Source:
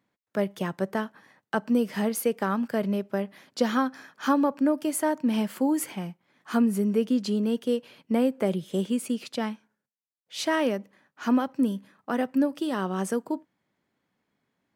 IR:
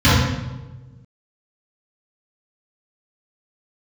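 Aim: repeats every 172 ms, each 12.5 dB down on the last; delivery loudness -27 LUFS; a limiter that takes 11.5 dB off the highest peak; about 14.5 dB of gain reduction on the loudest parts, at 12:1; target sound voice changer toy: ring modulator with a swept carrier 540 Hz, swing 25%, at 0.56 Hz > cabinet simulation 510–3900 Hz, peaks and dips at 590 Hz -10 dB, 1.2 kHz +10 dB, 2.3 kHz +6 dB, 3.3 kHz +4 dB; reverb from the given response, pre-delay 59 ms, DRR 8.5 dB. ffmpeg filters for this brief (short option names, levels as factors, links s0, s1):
-filter_complex "[0:a]acompressor=threshold=0.0224:ratio=12,alimiter=level_in=2.24:limit=0.0631:level=0:latency=1,volume=0.447,aecho=1:1:172|344|516:0.237|0.0569|0.0137,asplit=2[s0][s1];[1:a]atrim=start_sample=2205,adelay=59[s2];[s1][s2]afir=irnorm=-1:irlink=0,volume=0.0188[s3];[s0][s3]amix=inputs=2:normalize=0,aeval=exprs='val(0)*sin(2*PI*540*n/s+540*0.25/0.56*sin(2*PI*0.56*n/s))':c=same,highpass=510,equalizer=f=590:t=q:w=4:g=-10,equalizer=f=1200:t=q:w=4:g=10,equalizer=f=2300:t=q:w=4:g=6,equalizer=f=3300:t=q:w=4:g=4,lowpass=f=3900:w=0.5412,lowpass=f=3900:w=1.3066,volume=5.62"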